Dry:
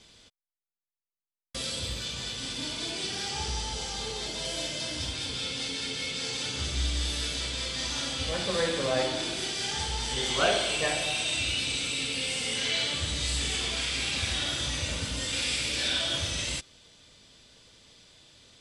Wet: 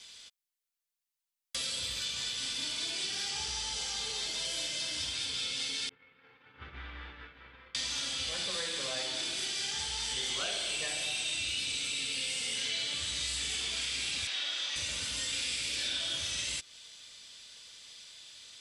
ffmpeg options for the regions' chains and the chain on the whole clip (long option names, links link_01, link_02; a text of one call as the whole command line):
ffmpeg -i in.wav -filter_complex "[0:a]asettb=1/sr,asplit=3[link_01][link_02][link_03];[link_01]atrim=end=5.894[link_04];[link_02]atrim=start=5.89:end=7.75,asetpts=PTS-STARTPTS,afade=type=in:duration=0.004:curve=qsin,afade=type=out:start_time=1.856:duration=0.004:curve=qsin,lowpass=frequency=1700:width=0.5412,lowpass=frequency=1700:width=1.3066,agate=range=-33dB:threshold=-31dB:ratio=3:release=100:detection=peak,equalizer=frequency=630:width_type=o:width=0.2:gain=-10[link_05];[link_03]atrim=start=7.746[link_06];[link_04][link_05]acrossfade=duration=0.004:curve1=hsin:curve2=qsin[link_07];[link_07][link_06]acrossfade=duration=0.004:curve1=qsin:curve2=hsin,asettb=1/sr,asplit=3[link_08][link_09][link_10];[link_08]atrim=end=14.274[link_11];[link_09]atrim=start=14.27:end=14.76,asetpts=PTS-STARTPTS,afade=type=in:duration=0.004:curve=qsin,afade=type=out:start_time=0.486:duration=0.004:curve=qsin,aeval=exprs='val(0)+0.5*0.0075*sgn(val(0))':channel_layout=same,highpass=530,lowpass=4400[link_12];[link_10]atrim=start=14.756[link_13];[link_11][link_12]acrossfade=duration=0.004:curve1=hsin:curve2=qsin[link_14];[link_14][link_13]acrossfade=duration=0.004:curve1=qsin:curve2=hsin,tiltshelf=frequency=910:gain=-10,acrossover=split=490|2700[link_15][link_16][link_17];[link_15]acompressor=threshold=-42dB:ratio=4[link_18];[link_16]acompressor=threshold=-40dB:ratio=4[link_19];[link_17]acompressor=threshold=-33dB:ratio=4[link_20];[link_18][link_19][link_20]amix=inputs=3:normalize=0,volume=-3dB" out.wav